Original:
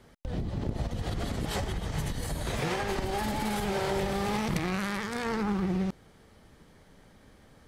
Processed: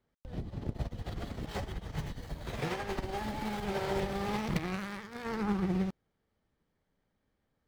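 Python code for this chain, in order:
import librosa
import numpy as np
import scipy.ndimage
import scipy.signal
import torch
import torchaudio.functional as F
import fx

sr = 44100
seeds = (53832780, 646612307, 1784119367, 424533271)

y = scipy.ndimage.median_filter(x, 5, mode='constant')
y = fx.upward_expand(y, sr, threshold_db=-42.0, expansion=2.5)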